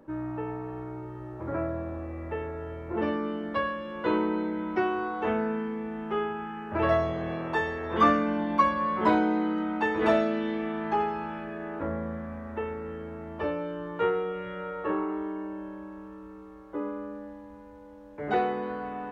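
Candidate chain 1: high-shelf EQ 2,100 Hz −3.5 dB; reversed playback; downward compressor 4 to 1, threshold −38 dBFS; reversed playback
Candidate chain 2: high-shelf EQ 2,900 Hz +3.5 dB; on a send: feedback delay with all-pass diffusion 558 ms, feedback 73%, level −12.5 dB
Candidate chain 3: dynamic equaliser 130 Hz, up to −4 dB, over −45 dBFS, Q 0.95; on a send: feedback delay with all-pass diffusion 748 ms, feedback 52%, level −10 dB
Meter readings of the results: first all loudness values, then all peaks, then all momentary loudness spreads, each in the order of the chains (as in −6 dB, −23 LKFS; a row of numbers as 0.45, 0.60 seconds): −40.5, −29.5, −30.0 LKFS; −26.0, −9.0, −9.5 dBFS; 5, 15, 15 LU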